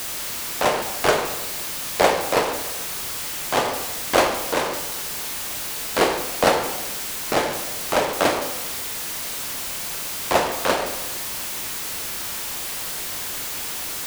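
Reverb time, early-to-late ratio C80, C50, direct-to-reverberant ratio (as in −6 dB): 1.0 s, 9.5 dB, 7.5 dB, 4.5 dB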